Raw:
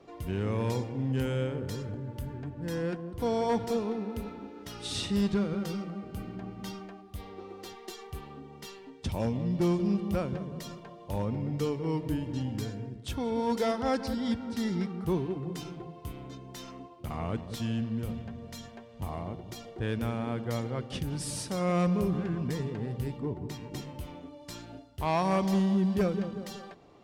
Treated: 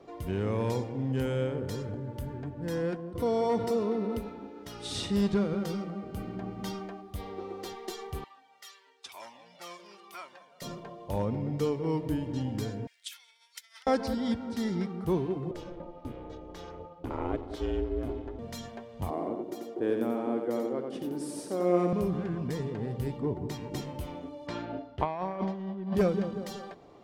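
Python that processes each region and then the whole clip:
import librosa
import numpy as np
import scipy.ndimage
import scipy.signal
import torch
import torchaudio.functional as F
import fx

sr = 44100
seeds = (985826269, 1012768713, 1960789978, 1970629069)

y = fx.chain(x, sr, fx.notch(hz=6700.0, q=14.0),
    fx.notch_comb(f0_hz=820.0),
    fx.env_flatten(amount_pct=50), at=(3.15, 4.19))
y = fx.chain(y, sr, fx.highpass(hz=1200.0, slope=12),
    fx.comb_cascade(direction='falling', hz=1.0), at=(8.24, 10.62))
y = fx.chain(y, sr, fx.high_shelf(hz=4400.0, db=10.5),
    fx.over_compress(threshold_db=-35.0, ratio=-0.5),
    fx.ladder_highpass(hz=1800.0, resonance_pct=40), at=(12.87, 13.87))
y = fx.chain(y, sr, fx.lowpass(hz=2400.0, slope=6),
    fx.ring_mod(carrier_hz=180.0), at=(15.51, 18.39))
y = fx.chain(y, sr, fx.highpass_res(hz=310.0, q=2.7),
    fx.peak_eq(hz=3900.0, db=-8.0, octaves=2.9),
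    fx.echo_single(ms=90, db=-5.0), at=(19.1, 21.93))
y = fx.chain(y, sr, fx.lowpass(hz=2500.0, slope=12),
    fx.low_shelf(hz=100.0, db=-12.0),
    fx.over_compress(threshold_db=-33.0, ratio=-0.5), at=(24.47, 25.95))
y = fx.peak_eq(y, sr, hz=560.0, db=4.0, octaves=2.0)
y = fx.notch(y, sr, hz=2700.0, q=25.0)
y = fx.rider(y, sr, range_db=4, speed_s=2.0)
y = y * 10.0 ** (-2.0 / 20.0)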